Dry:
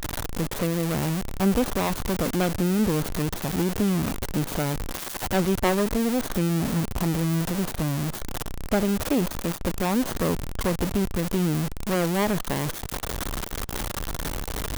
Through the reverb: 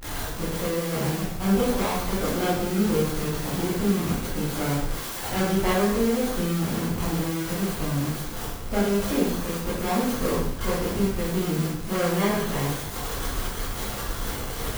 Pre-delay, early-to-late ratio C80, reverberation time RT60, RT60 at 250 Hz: 6 ms, 4.5 dB, 0.80 s, 0.80 s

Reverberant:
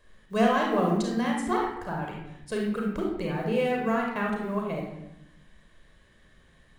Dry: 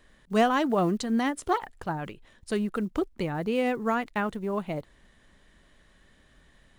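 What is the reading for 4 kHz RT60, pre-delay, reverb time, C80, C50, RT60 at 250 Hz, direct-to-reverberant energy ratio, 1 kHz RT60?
0.60 s, 33 ms, 0.80 s, 5.5 dB, 2.0 dB, 1.1 s, −1.0 dB, 0.80 s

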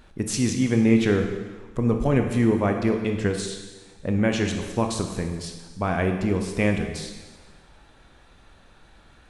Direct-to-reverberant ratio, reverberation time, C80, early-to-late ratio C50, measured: 4.0 dB, 1.4 s, 7.5 dB, 6.0 dB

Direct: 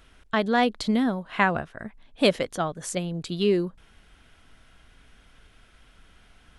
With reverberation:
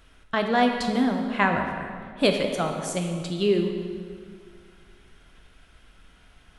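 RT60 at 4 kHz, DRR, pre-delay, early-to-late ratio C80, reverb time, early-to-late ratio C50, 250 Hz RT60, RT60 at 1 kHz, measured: 1.5 s, 3.0 dB, 9 ms, 6.0 dB, 2.1 s, 5.0 dB, 2.2 s, 2.0 s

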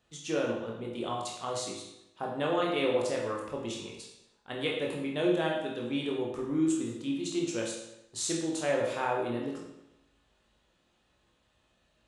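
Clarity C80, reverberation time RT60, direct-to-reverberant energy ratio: 6.0 dB, 0.85 s, −2.0 dB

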